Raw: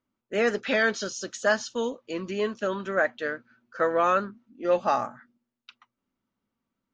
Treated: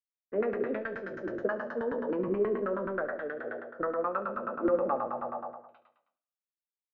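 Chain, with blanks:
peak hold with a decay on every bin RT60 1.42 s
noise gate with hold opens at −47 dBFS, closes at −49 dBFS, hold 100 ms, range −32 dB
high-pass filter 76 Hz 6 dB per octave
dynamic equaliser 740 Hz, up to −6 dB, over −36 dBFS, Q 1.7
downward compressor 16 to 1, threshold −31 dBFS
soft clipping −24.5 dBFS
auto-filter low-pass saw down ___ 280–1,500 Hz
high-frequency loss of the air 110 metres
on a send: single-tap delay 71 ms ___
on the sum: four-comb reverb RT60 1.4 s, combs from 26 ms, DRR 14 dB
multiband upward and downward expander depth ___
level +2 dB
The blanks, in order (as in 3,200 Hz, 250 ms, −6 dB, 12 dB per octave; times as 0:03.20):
9.4 Hz, −17.5 dB, 100%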